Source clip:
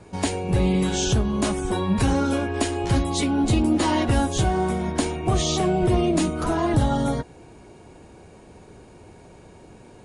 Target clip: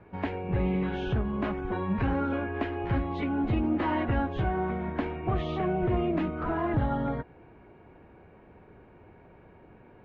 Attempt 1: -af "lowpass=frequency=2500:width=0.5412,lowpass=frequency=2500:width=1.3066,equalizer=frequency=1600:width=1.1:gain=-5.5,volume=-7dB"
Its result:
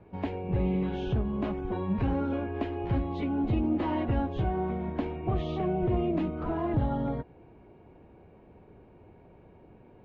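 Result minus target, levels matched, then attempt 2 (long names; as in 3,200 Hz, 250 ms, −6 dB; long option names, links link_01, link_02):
2,000 Hz band −7.0 dB
-af "lowpass=frequency=2500:width=0.5412,lowpass=frequency=2500:width=1.3066,equalizer=frequency=1600:width=1.1:gain=3.5,volume=-7dB"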